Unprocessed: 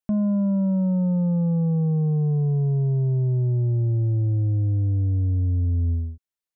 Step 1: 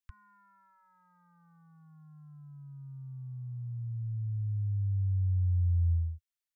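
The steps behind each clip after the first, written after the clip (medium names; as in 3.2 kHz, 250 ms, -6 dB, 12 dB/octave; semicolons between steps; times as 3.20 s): inverse Chebyshev band-stop 180–650 Hz, stop band 50 dB; trim -2.5 dB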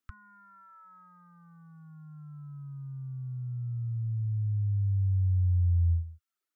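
reverb removal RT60 0.64 s; small resonant body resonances 280/1300 Hz, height 15 dB, ringing for 20 ms; trim +2.5 dB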